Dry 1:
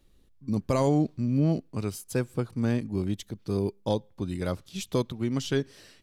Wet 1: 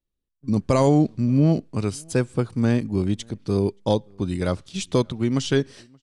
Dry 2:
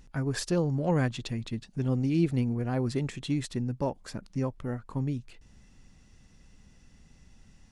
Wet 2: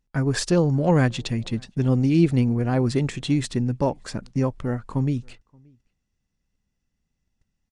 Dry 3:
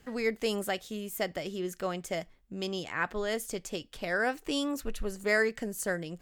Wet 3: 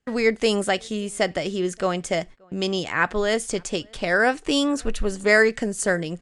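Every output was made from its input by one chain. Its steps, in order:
gate -48 dBFS, range -28 dB; echo from a far wall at 99 m, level -30 dB; resampled via 22.05 kHz; normalise loudness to -23 LUFS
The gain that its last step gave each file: +6.0 dB, +7.5 dB, +10.0 dB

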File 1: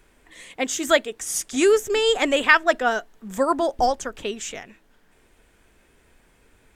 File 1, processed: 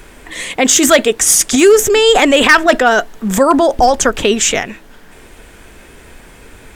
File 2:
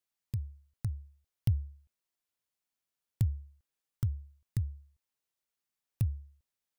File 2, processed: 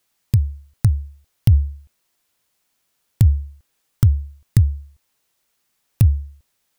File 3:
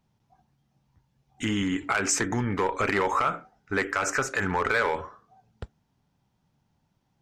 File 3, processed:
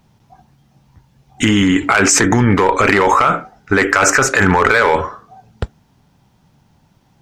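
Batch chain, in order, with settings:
in parallel at 0 dB: compressor with a negative ratio -28 dBFS, ratio -0.5; on the sum: hard clipper -11 dBFS; peak normalisation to -1.5 dBFS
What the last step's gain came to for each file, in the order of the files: +9.5 dB, +12.0 dB, +9.5 dB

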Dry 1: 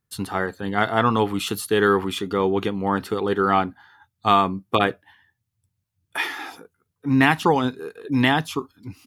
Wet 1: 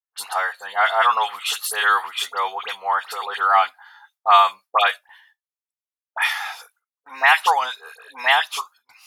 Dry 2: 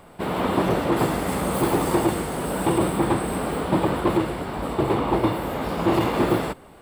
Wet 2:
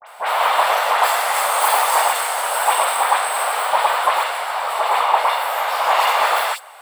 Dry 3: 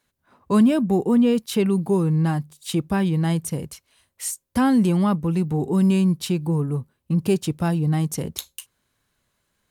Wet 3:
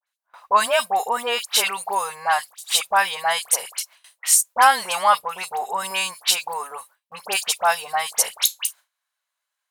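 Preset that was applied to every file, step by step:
inverse Chebyshev high-pass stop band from 350 Hz, stop band 40 dB; phase dispersion highs, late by 70 ms, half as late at 2.1 kHz; gate with hold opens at -49 dBFS; peak normalisation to -1.5 dBFS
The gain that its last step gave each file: +5.0 dB, +11.5 dB, +13.0 dB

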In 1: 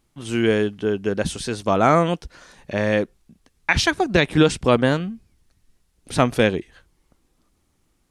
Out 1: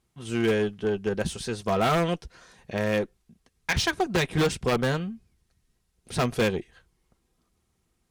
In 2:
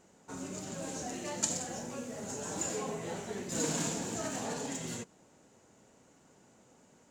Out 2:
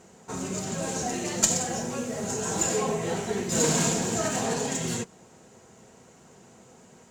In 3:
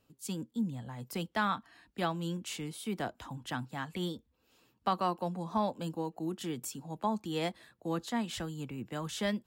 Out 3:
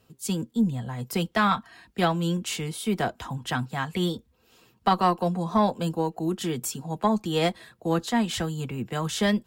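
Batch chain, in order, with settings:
comb of notches 290 Hz; wavefolder -12 dBFS; Chebyshev shaper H 6 -22 dB, 8 -32 dB, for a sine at -12 dBFS; normalise loudness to -27 LUFS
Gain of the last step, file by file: -4.0 dB, +11.0 dB, +10.5 dB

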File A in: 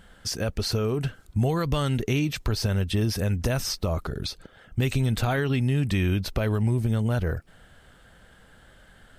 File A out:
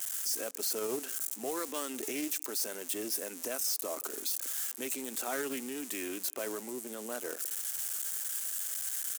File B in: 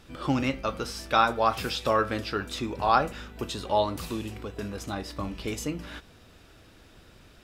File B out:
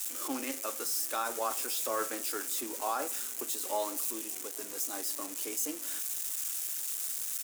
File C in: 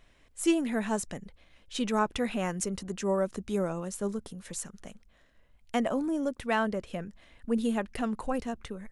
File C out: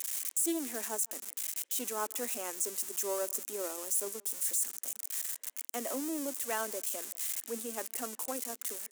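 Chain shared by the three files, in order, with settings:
zero-crossing glitches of -22.5 dBFS; resonant high shelf 5.6 kHz +7.5 dB, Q 1.5; in parallel at -2 dB: compressor with a negative ratio -28 dBFS; on the sum: peak limiter -14 dBFS; steep high-pass 260 Hz 48 dB/octave; speakerphone echo 170 ms, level -26 dB; loudspeaker Doppler distortion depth 0.14 ms; trim -8.5 dB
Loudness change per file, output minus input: -7.5 LU, -4.5 LU, -2.5 LU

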